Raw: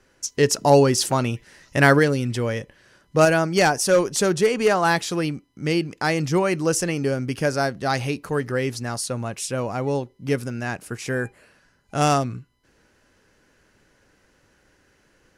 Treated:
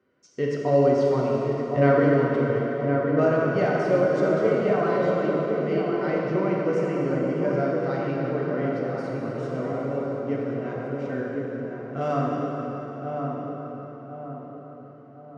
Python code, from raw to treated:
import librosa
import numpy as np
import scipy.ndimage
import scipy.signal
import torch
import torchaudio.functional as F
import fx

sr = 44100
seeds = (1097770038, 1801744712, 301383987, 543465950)

p1 = scipy.signal.sosfilt(scipy.signal.butter(2, 140.0, 'highpass', fs=sr, output='sos'), x)
p2 = fx.spacing_loss(p1, sr, db_at_10k=37)
p3 = fx.notch_comb(p2, sr, f0_hz=840.0)
p4 = p3 + fx.echo_filtered(p3, sr, ms=1062, feedback_pct=45, hz=1300.0, wet_db=-4.0, dry=0)
p5 = fx.rev_plate(p4, sr, seeds[0], rt60_s=4.3, hf_ratio=0.75, predelay_ms=0, drr_db=-4.0)
y = p5 * librosa.db_to_amplitude(-6.0)